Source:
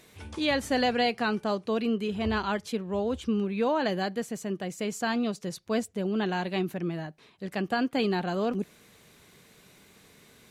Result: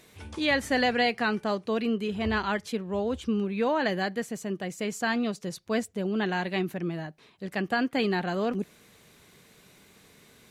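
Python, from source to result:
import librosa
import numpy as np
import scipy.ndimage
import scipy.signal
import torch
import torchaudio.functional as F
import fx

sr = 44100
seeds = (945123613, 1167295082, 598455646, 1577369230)

y = fx.dynamic_eq(x, sr, hz=1900.0, q=2.6, threshold_db=-47.0, ratio=4.0, max_db=6)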